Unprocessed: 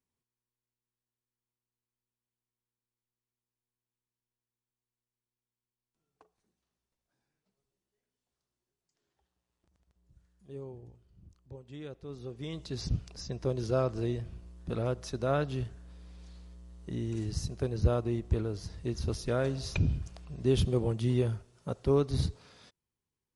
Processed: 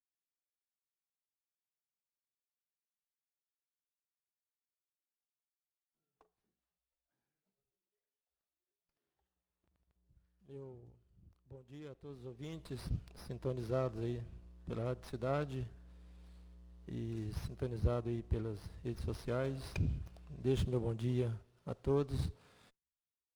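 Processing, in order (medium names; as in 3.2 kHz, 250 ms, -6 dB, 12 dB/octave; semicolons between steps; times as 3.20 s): spectral noise reduction 19 dB; sliding maximum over 5 samples; trim -7 dB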